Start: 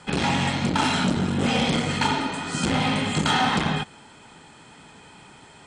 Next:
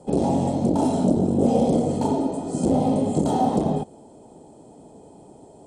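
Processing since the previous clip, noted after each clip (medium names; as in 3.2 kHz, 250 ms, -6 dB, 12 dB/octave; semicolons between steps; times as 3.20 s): FFT filter 160 Hz 0 dB, 300 Hz +7 dB, 660 Hz +8 dB, 1.5 kHz -25 dB, 2.2 kHz -26 dB, 11 kHz +1 dB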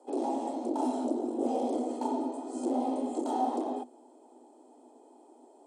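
rippled Chebyshev high-pass 240 Hz, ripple 6 dB; trim -5.5 dB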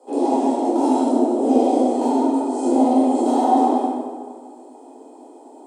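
plate-style reverb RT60 1.7 s, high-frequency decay 0.65×, DRR -8 dB; trim +4.5 dB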